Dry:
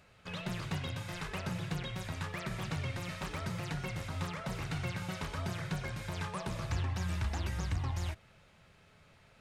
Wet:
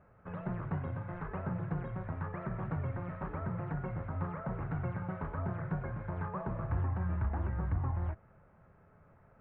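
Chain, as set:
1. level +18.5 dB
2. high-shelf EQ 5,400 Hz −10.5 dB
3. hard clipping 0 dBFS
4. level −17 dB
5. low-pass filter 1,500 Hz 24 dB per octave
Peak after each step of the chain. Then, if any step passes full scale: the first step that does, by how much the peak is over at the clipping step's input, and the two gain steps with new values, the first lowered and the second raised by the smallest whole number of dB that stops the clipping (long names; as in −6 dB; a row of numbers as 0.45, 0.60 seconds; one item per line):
−4.0, −4.5, −4.5, −21.5, −22.5 dBFS
no step passes full scale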